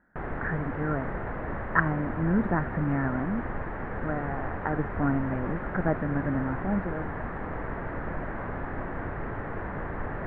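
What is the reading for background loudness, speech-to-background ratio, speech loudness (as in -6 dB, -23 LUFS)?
-35.0 LUFS, 4.5 dB, -30.5 LUFS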